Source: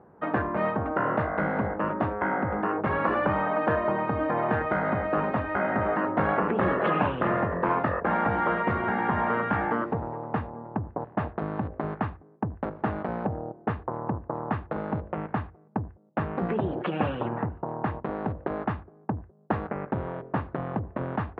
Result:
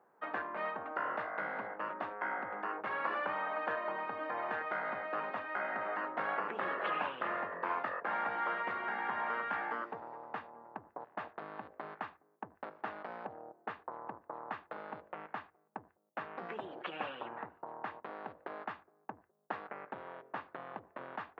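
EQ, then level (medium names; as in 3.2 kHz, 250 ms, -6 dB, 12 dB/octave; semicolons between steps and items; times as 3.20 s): high-pass 180 Hz 6 dB/octave; differentiator; treble shelf 2.2 kHz -10 dB; +9.5 dB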